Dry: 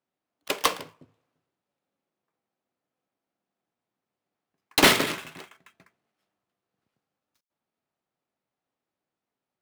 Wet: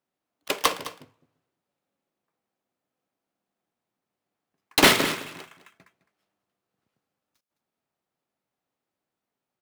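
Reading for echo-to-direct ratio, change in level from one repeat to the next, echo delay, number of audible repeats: −15.0 dB, repeats not evenly spaced, 210 ms, 1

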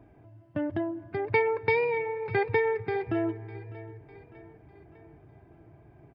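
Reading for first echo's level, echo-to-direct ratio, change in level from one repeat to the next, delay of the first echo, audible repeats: −19.0 dB, −17.5 dB, −5.5 dB, 602 ms, 3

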